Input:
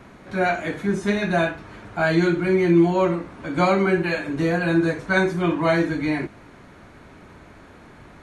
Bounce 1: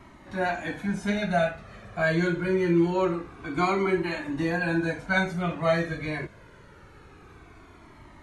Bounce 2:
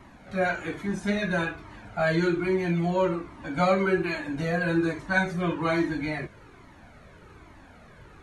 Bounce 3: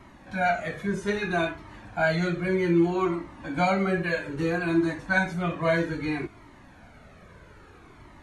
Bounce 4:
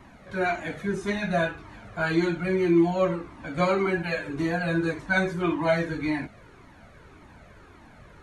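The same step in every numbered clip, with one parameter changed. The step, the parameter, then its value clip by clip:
flanger whose copies keep moving one way, speed: 0.25, 1.2, 0.62, 1.8 Hertz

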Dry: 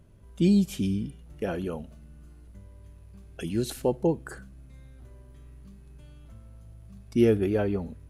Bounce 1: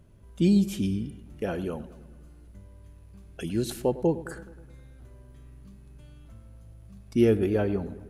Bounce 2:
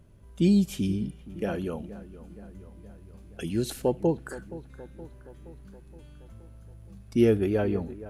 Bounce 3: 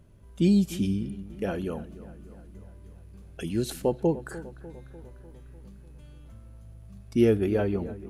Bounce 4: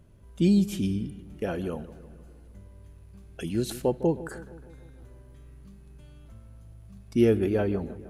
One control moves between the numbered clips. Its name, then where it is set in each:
delay with a low-pass on its return, delay time: 105, 471, 298, 155 milliseconds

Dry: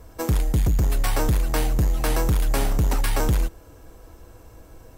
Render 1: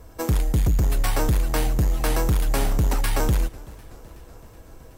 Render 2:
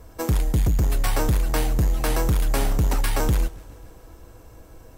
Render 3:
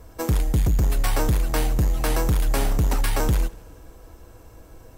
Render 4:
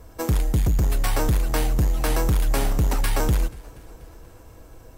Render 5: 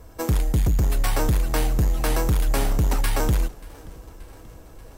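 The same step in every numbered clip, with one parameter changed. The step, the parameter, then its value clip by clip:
feedback echo with a swinging delay time, delay time: 376, 136, 82, 241, 582 milliseconds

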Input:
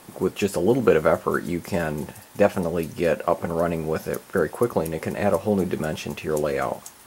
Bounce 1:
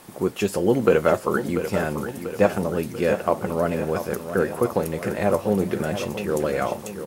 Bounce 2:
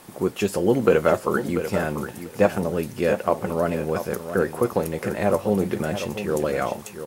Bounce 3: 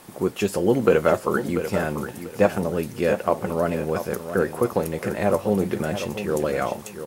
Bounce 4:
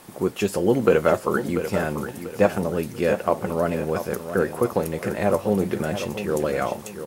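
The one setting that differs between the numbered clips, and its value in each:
repeating echo, feedback: 56, 15, 24, 35%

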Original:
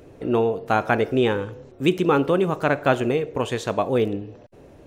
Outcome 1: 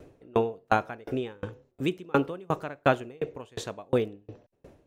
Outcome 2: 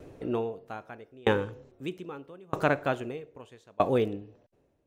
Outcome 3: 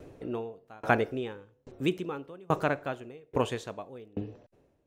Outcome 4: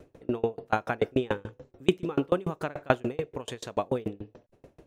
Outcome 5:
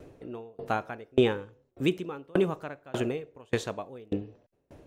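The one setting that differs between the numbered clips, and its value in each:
tremolo with a ramp in dB, speed: 2.8, 0.79, 1.2, 6.9, 1.7 Hertz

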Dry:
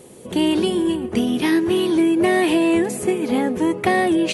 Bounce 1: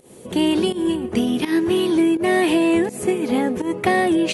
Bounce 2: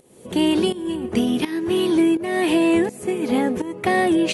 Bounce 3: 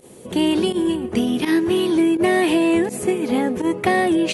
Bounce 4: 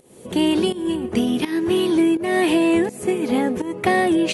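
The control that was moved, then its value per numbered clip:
fake sidechain pumping, release: 170, 526, 69, 332 milliseconds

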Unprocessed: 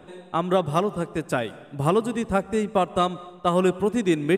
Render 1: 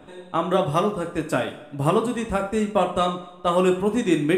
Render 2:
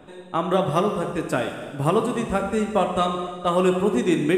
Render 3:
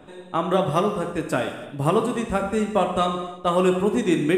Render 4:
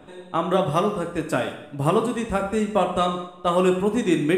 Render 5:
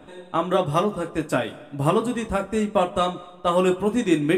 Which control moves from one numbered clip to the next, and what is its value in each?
reverb whose tail is shaped and stops, gate: 150, 530, 360, 240, 80 milliseconds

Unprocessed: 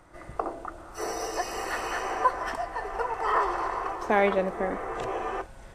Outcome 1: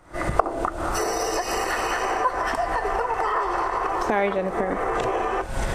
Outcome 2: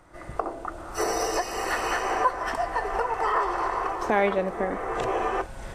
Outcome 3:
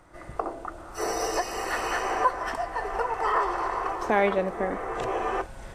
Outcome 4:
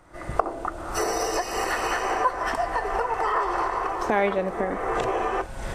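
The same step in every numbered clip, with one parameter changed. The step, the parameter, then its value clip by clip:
camcorder AGC, rising by: 90, 14, 5.2, 35 dB per second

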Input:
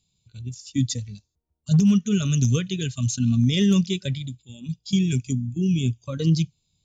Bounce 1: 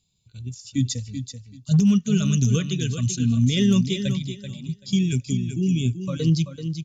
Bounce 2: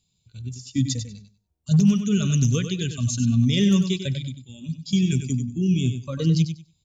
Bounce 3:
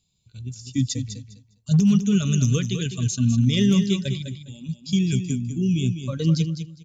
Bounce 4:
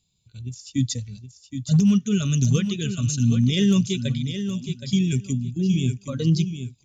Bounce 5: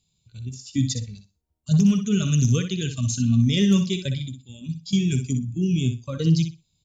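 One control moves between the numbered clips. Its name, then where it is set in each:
repeating echo, delay time: 384, 96, 203, 770, 61 milliseconds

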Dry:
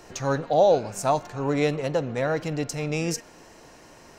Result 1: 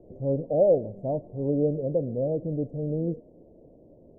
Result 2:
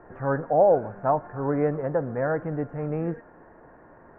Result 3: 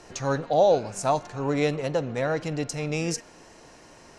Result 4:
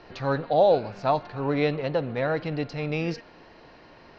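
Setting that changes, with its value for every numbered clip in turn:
elliptic low-pass filter, frequency: 590, 1,700, 11,000, 4,500 Hertz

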